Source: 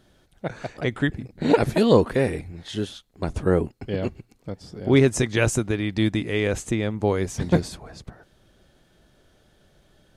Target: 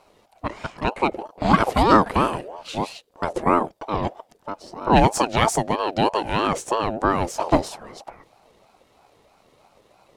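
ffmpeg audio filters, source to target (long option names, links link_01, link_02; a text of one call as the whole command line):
ffmpeg -i in.wav -af "aeval=exprs='if(lt(val(0),0),0.708*val(0),val(0))':channel_layout=same,aeval=exprs='val(0)*sin(2*PI*610*n/s+610*0.3/3.1*sin(2*PI*3.1*n/s))':channel_layout=same,volume=5.5dB" out.wav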